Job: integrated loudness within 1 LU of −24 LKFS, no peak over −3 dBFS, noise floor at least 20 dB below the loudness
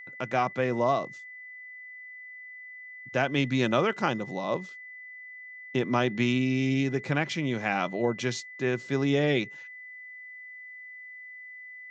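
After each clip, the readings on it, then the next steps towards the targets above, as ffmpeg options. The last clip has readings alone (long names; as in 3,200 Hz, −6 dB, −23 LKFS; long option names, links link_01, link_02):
interfering tone 2,000 Hz; level of the tone −42 dBFS; integrated loudness −28.0 LKFS; sample peak −10.5 dBFS; target loudness −24.0 LKFS
→ -af "bandreject=frequency=2000:width=30"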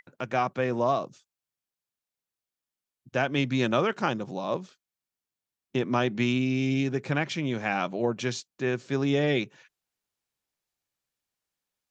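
interfering tone none found; integrated loudness −28.0 LKFS; sample peak −10.5 dBFS; target loudness −24.0 LKFS
→ -af "volume=4dB"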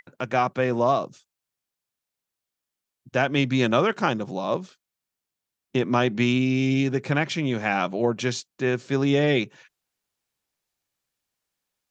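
integrated loudness −24.0 LKFS; sample peak −6.5 dBFS; background noise floor −87 dBFS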